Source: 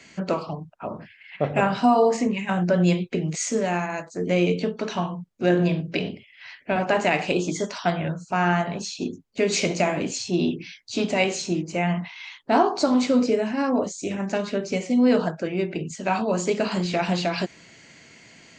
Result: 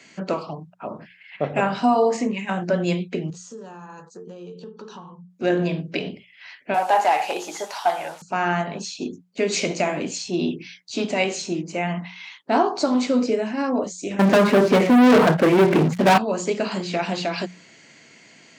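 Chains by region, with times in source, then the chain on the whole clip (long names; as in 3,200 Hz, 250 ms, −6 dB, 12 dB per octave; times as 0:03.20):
0:03.30–0:05.30: phaser with its sweep stopped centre 430 Hz, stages 8 + downward compressor 4 to 1, threshold −36 dBFS + high-frequency loss of the air 59 metres
0:06.74–0:08.22: linear delta modulator 64 kbit/s, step −37.5 dBFS + high-pass filter 540 Hz + parametric band 820 Hz +13.5 dB 0.38 octaves
0:14.19–0:16.18: low-pass filter 1,900 Hz + leveller curve on the samples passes 5
whole clip: high-pass filter 140 Hz; mains-hum notches 60/120/180 Hz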